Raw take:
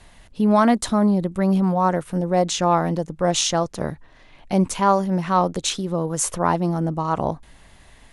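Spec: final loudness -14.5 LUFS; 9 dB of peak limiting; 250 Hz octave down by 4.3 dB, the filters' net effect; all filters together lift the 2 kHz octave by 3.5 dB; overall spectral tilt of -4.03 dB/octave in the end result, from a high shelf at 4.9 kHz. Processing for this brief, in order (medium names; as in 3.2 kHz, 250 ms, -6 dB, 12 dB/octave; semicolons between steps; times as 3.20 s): peaking EQ 250 Hz -6.5 dB; peaking EQ 2 kHz +3.5 dB; treble shelf 4.9 kHz +8 dB; trim +9 dB; peak limiter -2.5 dBFS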